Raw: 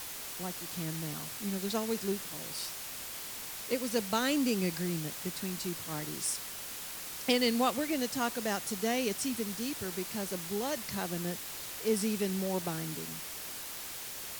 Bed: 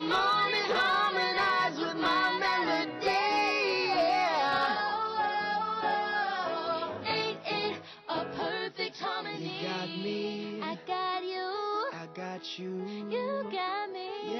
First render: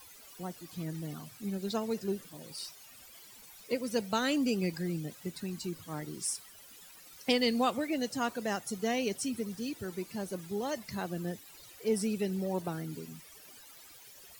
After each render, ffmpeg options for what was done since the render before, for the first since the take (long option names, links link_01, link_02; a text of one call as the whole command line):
ffmpeg -i in.wav -af "afftdn=noise_reduction=16:noise_floor=-42" out.wav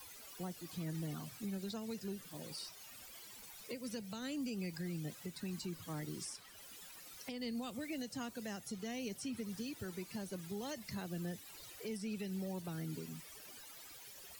ffmpeg -i in.wav -filter_complex "[0:a]acrossover=split=210|640|1800|5300[link_01][link_02][link_03][link_04][link_05];[link_01]acompressor=threshold=-38dB:ratio=4[link_06];[link_02]acompressor=threshold=-46dB:ratio=4[link_07];[link_03]acompressor=threshold=-52dB:ratio=4[link_08];[link_04]acompressor=threshold=-48dB:ratio=4[link_09];[link_05]acompressor=threshold=-51dB:ratio=4[link_10];[link_06][link_07][link_08][link_09][link_10]amix=inputs=5:normalize=0,alimiter=level_in=9.5dB:limit=-24dB:level=0:latency=1:release=250,volume=-9.5dB" out.wav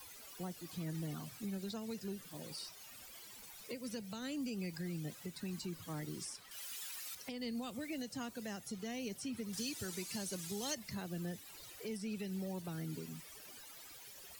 ffmpeg -i in.wav -filter_complex "[0:a]asettb=1/sr,asplit=3[link_01][link_02][link_03];[link_01]atrim=end=6.514[link_04];[link_02]atrim=start=6.51:end=7.15,asetpts=PTS-STARTPTS,afade=type=in:duration=0.004:curve=qsin,afade=type=out:start_time=0.636:duration=0.004:curve=qsin,tiltshelf=frequency=780:gain=-8.5[link_05];[link_03]atrim=start=7.146[link_06];[link_04][link_05]acrossfade=duration=0.004:curve1=hsin:curve2=qsin[link_07];[link_07][link_06]acrossfade=duration=0.004:curve1=qsin:curve2=hsin,asettb=1/sr,asplit=3[link_08][link_09][link_10];[link_08]atrim=end=9.534[link_11];[link_09]atrim=start=9.53:end=10.75,asetpts=PTS-STARTPTS,afade=type=in:duration=0.004:curve=qsin,afade=type=out:start_time=1.216:duration=0.004:curve=qsin,equalizer=frequency=7100:width=0.43:gain=11.5[link_12];[link_10]atrim=start=10.746[link_13];[link_11][link_12]acrossfade=duration=0.004:curve1=hsin:curve2=qsin[link_14];[link_14][link_13]acrossfade=duration=0.004:curve1=qsin:curve2=hsin" out.wav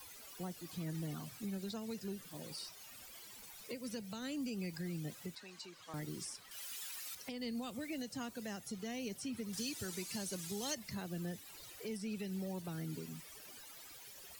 ffmpeg -i in.wav -filter_complex "[0:a]asettb=1/sr,asplit=3[link_01][link_02][link_03];[link_01]atrim=end=5.354[link_04];[link_02]atrim=start=5.35:end=5.94,asetpts=PTS-STARTPTS,afade=type=in:duration=0.004:curve=qsin,afade=type=out:start_time=0.586:duration=0.004:curve=qsin,acrossover=split=440 7200:gain=0.1 1 0.158[link_05][link_06][link_07];[link_05][link_06][link_07]amix=inputs=3:normalize=0[link_08];[link_03]atrim=start=5.936[link_09];[link_04][link_08]acrossfade=duration=0.004:curve1=hsin:curve2=qsin[link_10];[link_10][link_09]acrossfade=duration=0.004:curve1=qsin:curve2=hsin" out.wav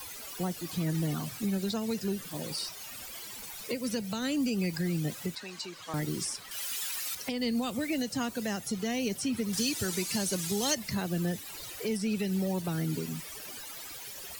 ffmpeg -i in.wav -af "volume=11dB" out.wav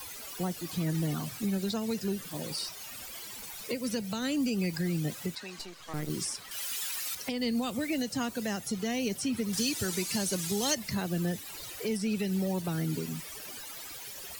ffmpeg -i in.wav -filter_complex "[0:a]asettb=1/sr,asplit=3[link_01][link_02][link_03];[link_01]atrim=end=5.594[link_04];[link_02]atrim=start=5.59:end=6.1,asetpts=PTS-STARTPTS,afade=type=in:duration=0.004:curve=qsin,afade=type=out:start_time=0.506:duration=0.004:curve=qsin,aeval=exprs='if(lt(val(0),0),0.251*val(0),val(0))':channel_layout=same[link_05];[link_03]atrim=start=6.096[link_06];[link_04][link_05]acrossfade=duration=0.004:curve1=hsin:curve2=qsin[link_07];[link_07][link_06]acrossfade=duration=0.004:curve1=qsin:curve2=hsin" out.wav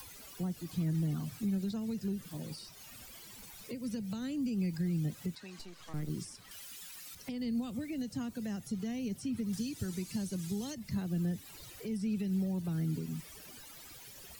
ffmpeg -i in.wav -filter_complex "[0:a]acrossover=split=260[link_01][link_02];[link_02]acompressor=threshold=-53dB:ratio=2.5[link_03];[link_01][link_03]amix=inputs=2:normalize=0" out.wav